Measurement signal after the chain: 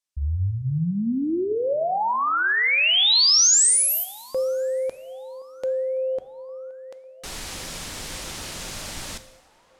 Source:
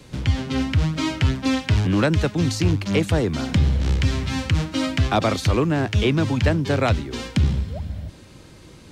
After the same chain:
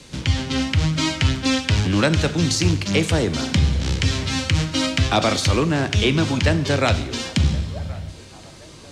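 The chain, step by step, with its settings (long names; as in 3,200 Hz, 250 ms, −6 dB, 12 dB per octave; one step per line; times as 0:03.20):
low-pass filter 8,400 Hz 12 dB per octave
high-shelf EQ 3,100 Hz +11 dB
mains-hum notches 60/120 Hz
feedback echo with a band-pass in the loop 1,072 ms, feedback 66%, band-pass 780 Hz, level −20 dB
coupled-rooms reverb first 0.92 s, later 3.3 s, from −21 dB, DRR 10 dB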